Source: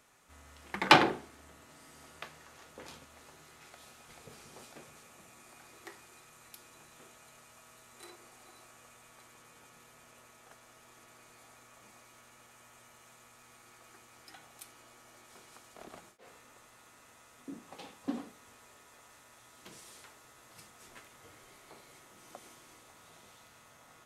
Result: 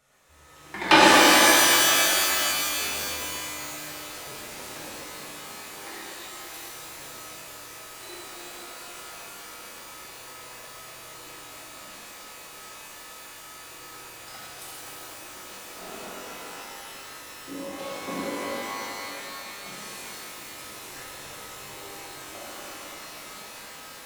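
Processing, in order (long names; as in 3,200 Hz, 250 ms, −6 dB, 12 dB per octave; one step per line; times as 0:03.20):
automatic gain control gain up to 6 dB
flanger 0.28 Hz, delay 1.4 ms, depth 3.5 ms, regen −36%
reverb with rising layers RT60 3.3 s, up +12 semitones, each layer −2 dB, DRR −9 dB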